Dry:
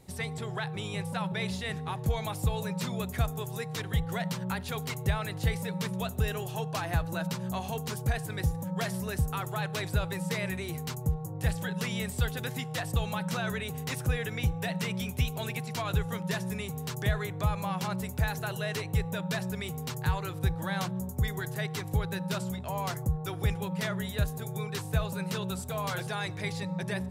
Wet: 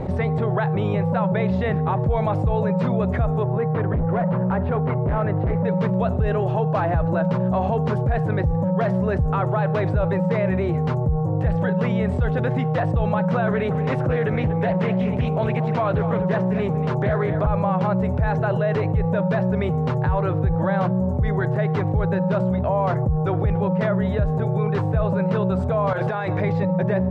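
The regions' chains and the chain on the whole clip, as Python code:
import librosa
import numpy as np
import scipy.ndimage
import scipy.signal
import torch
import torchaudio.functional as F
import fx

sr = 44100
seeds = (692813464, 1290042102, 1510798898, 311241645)

y = fx.chain(x, sr, fx.lowpass(hz=1800.0, slope=12),
    fx.clip_hard(threshold_db=-30.5), at=(3.43, 5.65))
y = fx.chain(y, sr, fx.highpass(hz=130.0, slope=12),
    fx.echo_single(ms=238, db=-13.5),
    fx.doppler_dist(depth_ms=0.34), at=(13.47, 17.47))
y = fx.chain(y, sr, fx.low_shelf(hz=420.0, db=-7.0),
    fx.over_compress(threshold_db=-40.0, ratio=-0.5), at=(25.93, 26.4))
y = scipy.signal.sosfilt(scipy.signal.butter(2, 1200.0, 'lowpass', fs=sr, output='sos'), y)
y = fx.peak_eq(y, sr, hz=570.0, db=7.0, octaves=0.32)
y = fx.env_flatten(y, sr, amount_pct=70)
y = y * librosa.db_to_amplitude(5.0)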